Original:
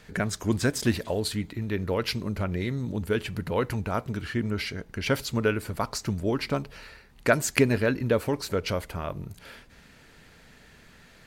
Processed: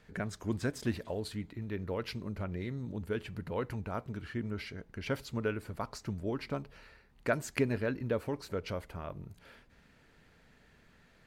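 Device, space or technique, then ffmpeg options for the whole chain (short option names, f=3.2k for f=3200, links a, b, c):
behind a face mask: -af "highshelf=f=3.3k:g=-7.5,volume=-8.5dB"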